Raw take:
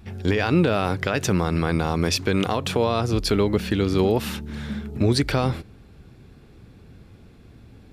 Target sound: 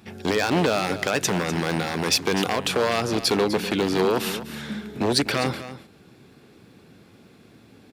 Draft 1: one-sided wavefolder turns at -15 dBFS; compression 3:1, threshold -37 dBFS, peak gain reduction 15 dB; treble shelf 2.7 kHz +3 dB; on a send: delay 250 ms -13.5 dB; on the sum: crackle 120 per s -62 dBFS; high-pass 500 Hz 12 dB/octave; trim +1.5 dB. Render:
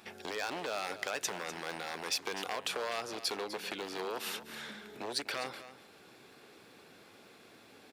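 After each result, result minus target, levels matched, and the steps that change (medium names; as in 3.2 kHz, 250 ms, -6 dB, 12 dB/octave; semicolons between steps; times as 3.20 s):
compression: peak gain reduction +15 dB; 250 Hz band -8.0 dB
remove: compression 3:1, threshold -37 dBFS, peak gain reduction 15 dB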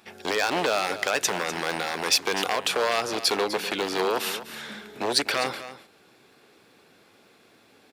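250 Hz band -8.0 dB
change: high-pass 190 Hz 12 dB/octave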